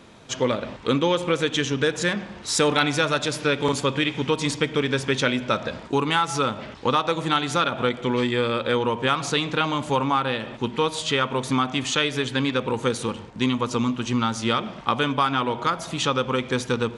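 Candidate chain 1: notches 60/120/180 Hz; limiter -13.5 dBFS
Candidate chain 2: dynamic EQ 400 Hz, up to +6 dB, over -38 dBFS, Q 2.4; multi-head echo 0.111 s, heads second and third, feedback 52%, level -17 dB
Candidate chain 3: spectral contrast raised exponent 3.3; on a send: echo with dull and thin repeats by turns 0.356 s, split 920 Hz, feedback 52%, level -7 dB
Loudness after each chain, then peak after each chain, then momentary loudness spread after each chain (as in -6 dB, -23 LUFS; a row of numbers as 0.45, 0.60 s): -25.5, -22.0, -24.5 LUFS; -13.5, -5.5, -11.0 dBFS; 4, 5, 4 LU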